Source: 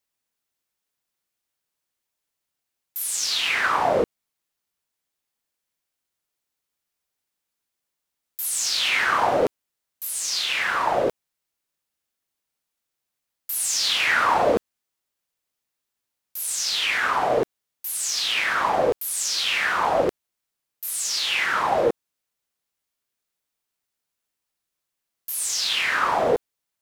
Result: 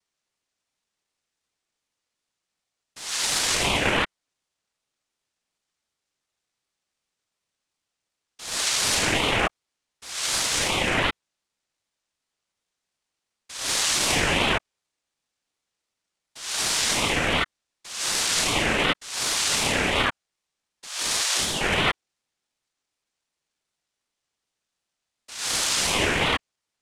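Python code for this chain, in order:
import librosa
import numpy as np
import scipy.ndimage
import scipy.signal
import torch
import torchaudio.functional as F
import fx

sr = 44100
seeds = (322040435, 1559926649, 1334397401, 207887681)

y = 10.0 ** (-23.5 / 20.0) * np.tanh(x / 10.0 ** (-23.5 / 20.0))
y = fx.noise_vocoder(y, sr, seeds[0], bands=3)
y = fx.brickwall_highpass(y, sr, low_hz=1400.0, at=(20.87, 21.61))
y = fx.ring_lfo(y, sr, carrier_hz=1300.0, swing_pct=30, hz=2.7)
y = y * librosa.db_to_amplitude(7.0)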